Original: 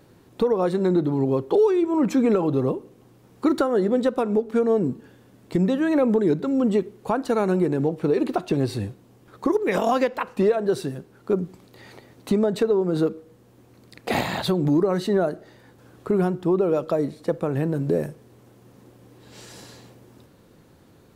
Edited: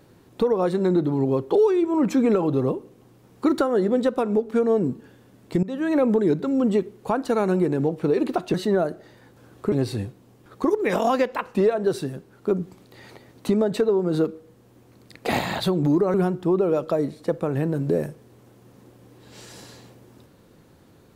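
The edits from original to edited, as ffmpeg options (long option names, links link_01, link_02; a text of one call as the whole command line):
ffmpeg -i in.wav -filter_complex "[0:a]asplit=5[link_01][link_02][link_03][link_04][link_05];[link_01]atrim=end=5.63,asetpts=PTS-STARTPTS,afade=type=out:start_time=5.626:duration=0.004:curve=hsin:silence=0.1[link_06];[link_02]atrim=start=5.63:end=8.542,asetpts=PTS-STARTPTS,afade=type=in:duration=0.41:curve=qsin:silence=0.1[link_07];[link_03]atrim=start=14.958:end=16.142[link_08];[link_04]atrim=start=8.538:end=14.962[link_09];[link_05]atrim=start=16.138[link_10];[link_06][link_07]concat=n=2:v=0:a=1[link_11];[link_11][link_08]acrossfade=duration=0.004:curve1=hsin:curve2=hsin[link_12];[link_12][link_09]acrossfade=duration=0.004:curve1=hsin:curve2=hsin[link_13];[link_13][link_10]acrossfade=duration=0.004:curve1=hsin:curve2=hsin" out.wav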